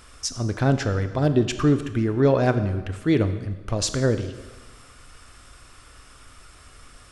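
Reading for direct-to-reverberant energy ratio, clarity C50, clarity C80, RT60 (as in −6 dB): 9.5 dB, 11.0 dB, 12.5 dB, 1.3 s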